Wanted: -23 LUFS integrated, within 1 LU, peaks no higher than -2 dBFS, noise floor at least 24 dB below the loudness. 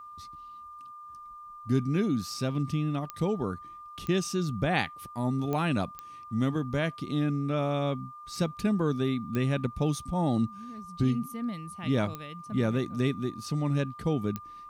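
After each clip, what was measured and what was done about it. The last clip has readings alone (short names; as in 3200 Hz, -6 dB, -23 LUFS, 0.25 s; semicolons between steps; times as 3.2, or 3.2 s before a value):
clicks 7; steady tone 1200 Hz; tone level -43 dBFS; loudness -30.0 LUFS; peak -13.0 dBFS; loudness target -23.0 LUFS
-> de-click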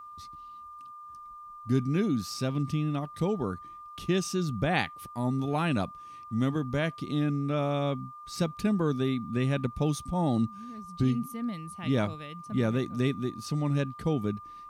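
clicks 0; steady tone 1200 Hz; tone level -43 dBFS
-> notch 1200 Hz, Q 30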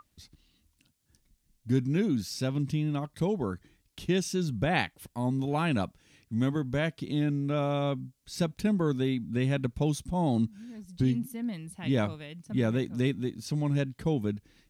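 steady tone none; loudness -30.0 LUFS; peak -13.0 dBFS; loudness target -23.0 LUFS
-> gain +7 dB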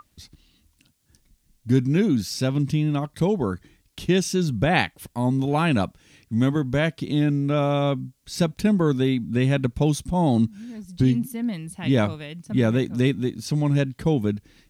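loudness -23.0 LUFS; peak -6.0 dBFS; noise floor -66 dBFS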